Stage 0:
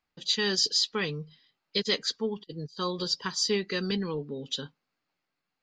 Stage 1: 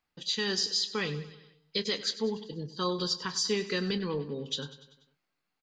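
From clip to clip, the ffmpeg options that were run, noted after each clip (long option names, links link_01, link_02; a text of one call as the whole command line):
ffmpeg -i in.wav -filter_complex "[0:a]alimiter=limit=-19.5dB:level=0:latency=1:release=135,asplit=2[link_01][link_02];[link_02]adelay=28,volume=-13.5dB[link_03];[link_01][link_03]amix=inputs=2:normalize=0,aecho=1:1:97|194|291|388|485:0.178|0.0996|0.0558|0.0312|0.0175" out.wav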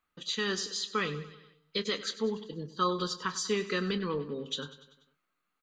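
ffmpeg -i in.wav -af "equalizer=frequency=125:width_type=o:width=0.33:gain=-10,equalizer=frequency=800:width_type=o:width=0.33:gain=-5,equalizer=frequency=1250:width_type=o:width=0.33:gain=10,equalizer=frequency=5000:width_type=o:width=0.33:gain=-10" out.wav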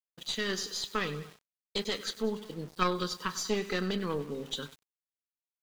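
ffmpeg -i in.wav -af "aeval=exprs='val(0)*gte(abs(val(0)),0.00447)':channel_layout=same,aeval=exprs='0.168*(cos(1*acos(clip(val(0)/0.168,-1,1)))-cos(1*PI/2))+0.075*(cos(2*acos(clip(val(0)/0.168,-1,1)))-cos(2*PI/2))+0.0237*(cos(3*acos(clip(val(0)/0.168,-1,1)))-cos(3*PI/2))+0.0119*(cos(5*acos(clip(val(0)/0.168,-1,1)))-cos(5*PI/2))':channel_layout=same,agate=range=-33dB:threshold=-48dB:ratio=3:detection=peak" out.wav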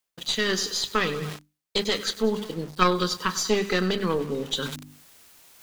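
ffmpeg -i in.wav -af "bandreject=frequency=50:width_type=h:width=6,bandreject=frequency=100:width_type=h:width=6,bandreject=frequency=150:width_type=h:width=6,bandreject=frequency=200:width_type=h:width=6,bandreject=frequency=250:width_type=h:width=6,bandreject=frequency=300:width_type=h:width=6,areverse,acompressor=mode=upward:threshold=-33dB:ratio=2.5,areverse,volume=8dB" out.wav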